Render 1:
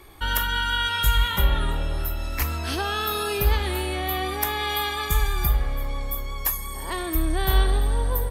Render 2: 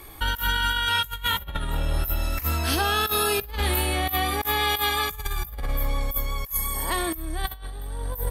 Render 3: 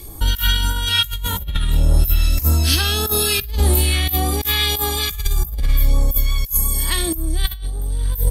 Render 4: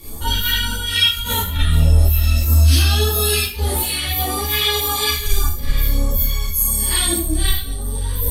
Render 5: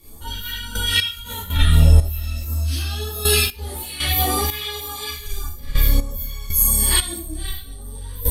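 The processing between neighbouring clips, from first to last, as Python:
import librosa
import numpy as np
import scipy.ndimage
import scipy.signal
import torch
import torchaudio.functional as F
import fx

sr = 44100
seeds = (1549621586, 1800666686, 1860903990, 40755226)

y1 = fx.peak_eq(x, sr, hz=14000.0, db=10.0, octaves=0.82)
y1 = fx.notch(y1, sr, hz=380.0, q=12.0)
y1 = fx.over_compress(y1, sr, threshold_db=-25.0, ratio=-0.5)
y2 = fx.phaser_stages(y1, sr, stages=2, low_hz=620.0, high_hz=2000.0, hz=1.7, feedback_pct=50)
y2 = y2 * 10.0 ** (8.0 / 20.0)
y3 = fx.rider(y2, sr, range_db=5, speed_s=0.5)
y3 = fx.rev_schroeder(y3, sr, rt60_s=0.41, comb_ms=26, drr_db=-7.0)
y3 = fx.ensemble(y3, sr)
y3 = y3 * 10.0 ** (-3.0 / 20.0)
y4 = fx.step_gate(y3, sr, bpm=60, pattern='...x..xx..', floor_db=-12.0, edge_ms=4.5)
y4 = y4 * 10.0 ** (1.5 / 20.0)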